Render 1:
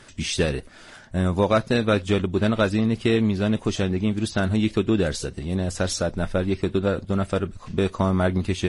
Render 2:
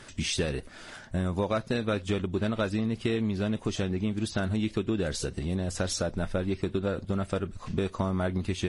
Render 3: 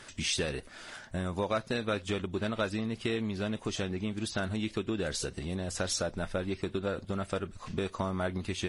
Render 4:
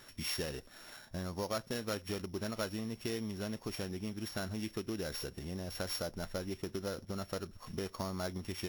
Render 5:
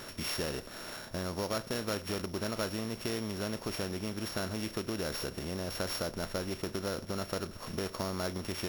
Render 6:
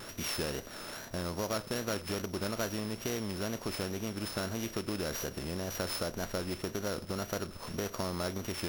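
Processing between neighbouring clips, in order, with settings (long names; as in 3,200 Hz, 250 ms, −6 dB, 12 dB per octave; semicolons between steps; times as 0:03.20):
downward compressor 2.5 to 1, threshold −28 dBFS, peak gain reduction 9.5 dB
low-shelf EQ 430 Hz −6.5 dB
samples sorted by size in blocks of 8 samples; level −6 dB
compressor on every frequency bin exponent 0.6
tape wow and flutter 92 cents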